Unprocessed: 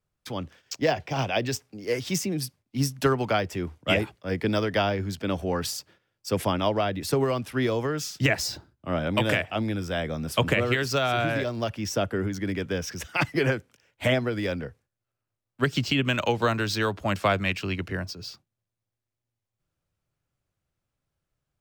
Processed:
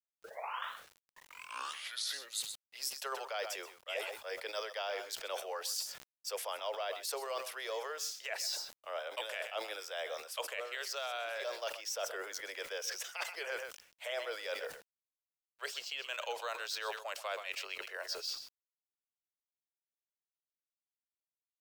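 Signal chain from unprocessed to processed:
turntable start at the beginning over 3.00 s
Butterworth high-pass 490 Hz 48 dB per octave
parametric band 650 Hz −6.5 dB 2.1 octaves
on a send: single-tap delay 128 ms −16.5 dB
on the sum: bit reduction 11 bits
reversed playback
downward compressor 5 to 1, threshold −43 dBFS, peak gain reduction 19.5 dB
reversed playback
dynamic equaliser 2,000 Hz, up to −5 dB, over −56 dBFS, Q 0.92
level that may fall only so fast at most 110 dB per second
level +7 dB

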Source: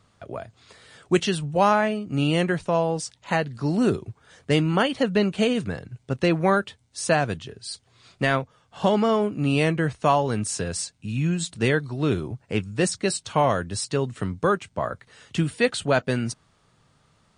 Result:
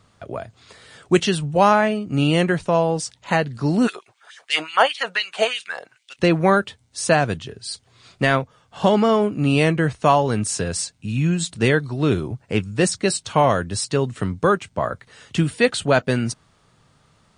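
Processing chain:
0:03.86–0:06.18: auto-filter high-pass sine 8.5 Hz → 1.6 Hz 630–3,200 Hz
level +4 dB

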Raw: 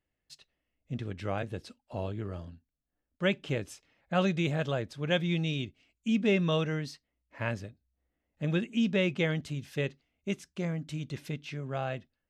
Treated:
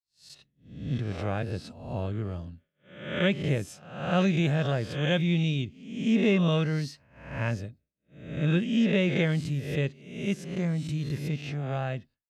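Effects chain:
peak hold with a rise ahead of every peak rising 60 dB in 0.73 s
downward expander −52 dBFS
parametric band 130 Hz +7 dB 1.9 octaves
level −1 dB

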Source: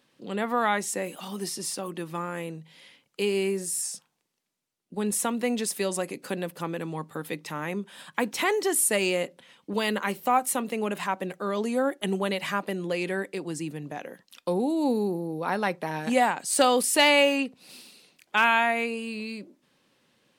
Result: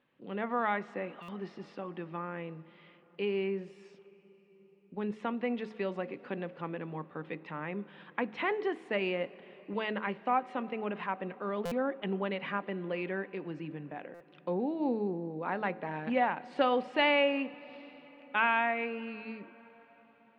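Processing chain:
low-pass filter 2,800 Hz 24 dB per octave
hum removal 108.1 Hz, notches 7
on a send at −18.5 dB: convolution reverb RT60 5.6 s, pre-delay 11 ms
on the sum: buffer that repeats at 0:01.22/0:11.65/0:14.14, samples 256, times 10
level −6 dB

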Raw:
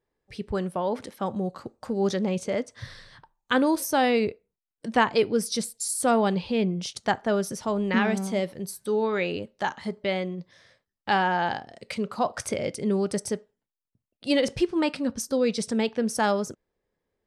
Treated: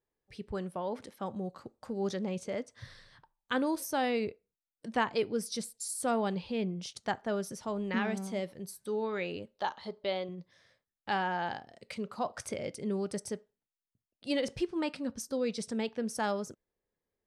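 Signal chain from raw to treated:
0:09.55–0:10.29: octave-band graphic EQ 125/250/500/1,000/2,000/4,000/8,000 Hz −7/−4/+4/+4/−5/+10/−11 dB
level −8.5 dB

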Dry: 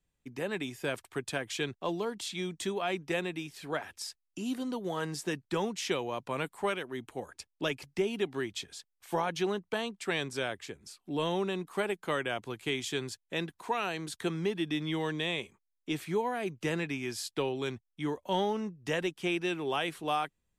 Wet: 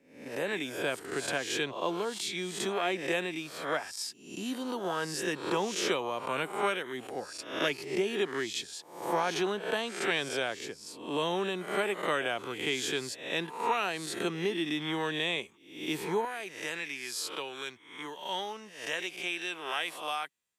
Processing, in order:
peak hold with a rise ahead of every peak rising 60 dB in 0.59 s
high-pass filter 260 Hz 6 dB per octave, from 0:16.25 1,500 Hz
level +1 dB

